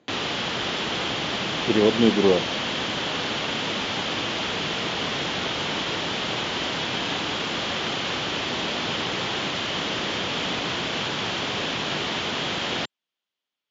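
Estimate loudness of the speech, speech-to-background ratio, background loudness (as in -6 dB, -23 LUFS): -21.5 LUFS, 4.5 dB, -26.0 LUFS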